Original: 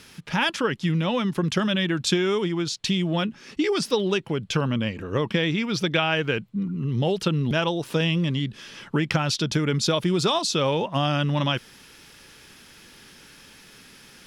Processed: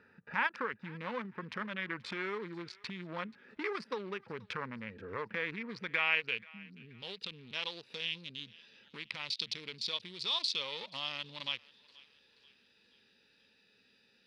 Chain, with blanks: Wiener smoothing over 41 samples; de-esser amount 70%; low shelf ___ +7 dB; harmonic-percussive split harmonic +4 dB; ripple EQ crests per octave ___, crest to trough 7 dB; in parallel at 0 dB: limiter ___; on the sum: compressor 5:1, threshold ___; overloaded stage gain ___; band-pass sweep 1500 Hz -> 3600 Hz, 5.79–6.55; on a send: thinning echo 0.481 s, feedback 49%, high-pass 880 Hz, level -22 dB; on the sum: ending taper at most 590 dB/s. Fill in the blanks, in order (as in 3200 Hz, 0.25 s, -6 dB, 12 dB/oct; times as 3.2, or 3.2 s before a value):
130 Hz, 0.91, -16.5 dBFS, -18 dBFS, 12 dB